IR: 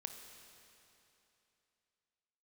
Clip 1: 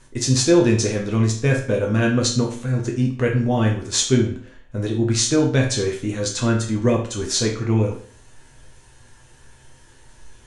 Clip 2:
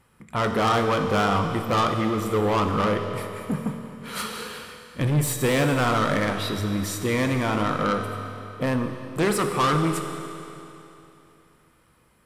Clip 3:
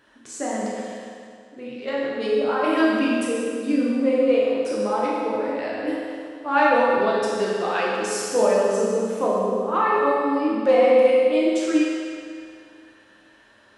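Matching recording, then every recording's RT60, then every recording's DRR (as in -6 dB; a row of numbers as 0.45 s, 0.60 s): 2; 0.50 s, 3.0 s, 2.2 s; -0.5 dB, 5.0 dB, -6.5 dB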